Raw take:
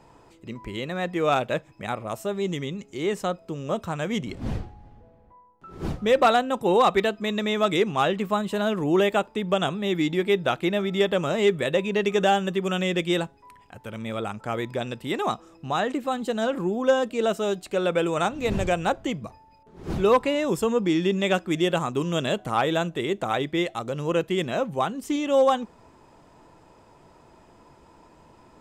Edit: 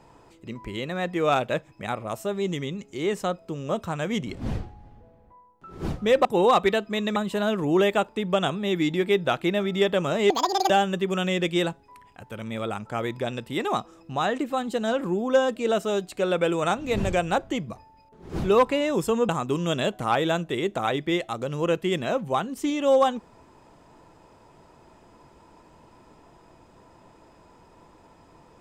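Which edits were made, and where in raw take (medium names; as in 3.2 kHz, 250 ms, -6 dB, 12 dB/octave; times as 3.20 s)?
6.25–6.56 s: delete
7.47–8.35 s: delete
11.49–12.24 s: speed 188%
20.83–21.75 s: delete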